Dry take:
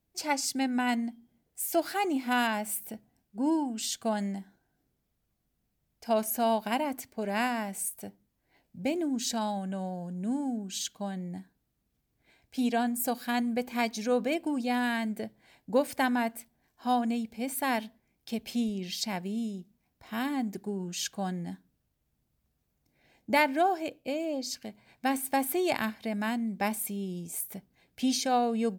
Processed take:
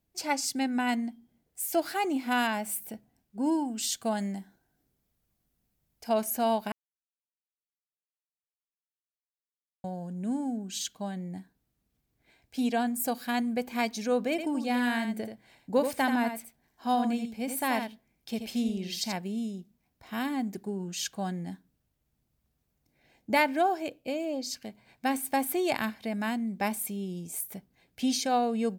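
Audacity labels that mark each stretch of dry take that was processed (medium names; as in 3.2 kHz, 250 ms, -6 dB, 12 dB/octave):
3.390000	6.090000	treble shelf 6.9 kHz +5 dB
6.720000	9.840000	mute
14.300000	19.130000	delay 82 ms -7.5 dB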